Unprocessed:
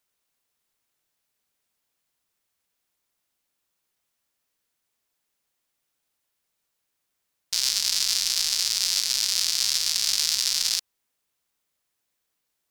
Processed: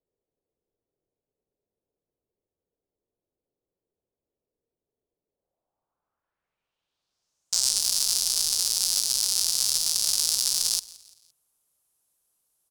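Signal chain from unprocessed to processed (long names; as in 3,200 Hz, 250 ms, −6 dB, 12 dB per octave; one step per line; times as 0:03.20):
low-pass filter sweep 440 Hz → 11,000 Hz, 0:05.26–0:07.82
in parallel at −7.5 dB: wave folding −15.5 dBFS
on the sum: graphic EQ with 10 bands 250 Hz −4 dB, 2,000 Hz −10 dB, 4,000 Hz −4 dB, 16,000 Hz +4 dB
echo with shifted repeats 171 ms, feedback 44%, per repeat −48 Hz, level −21.5 dB
level −1 dB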